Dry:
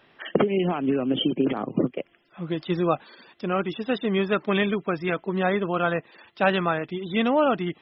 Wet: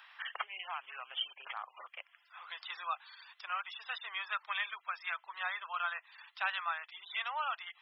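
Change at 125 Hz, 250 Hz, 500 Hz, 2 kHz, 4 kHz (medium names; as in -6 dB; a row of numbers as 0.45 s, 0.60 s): under -40 dB, under -40 dB, -32.5 dB, -7.0 dB, -7.5 dB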